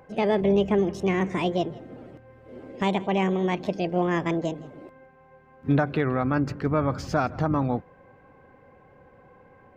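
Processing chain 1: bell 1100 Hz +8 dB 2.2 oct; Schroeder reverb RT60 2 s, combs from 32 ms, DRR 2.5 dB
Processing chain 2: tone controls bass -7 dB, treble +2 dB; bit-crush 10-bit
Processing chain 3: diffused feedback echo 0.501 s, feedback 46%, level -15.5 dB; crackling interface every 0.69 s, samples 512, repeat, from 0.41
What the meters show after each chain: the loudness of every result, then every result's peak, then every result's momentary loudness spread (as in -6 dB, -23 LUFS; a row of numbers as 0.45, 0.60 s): -20.5, -27.5, -25.5 LUFS; -5.0, -11.5, -11.0 dBFS; 17, 16, 19 LU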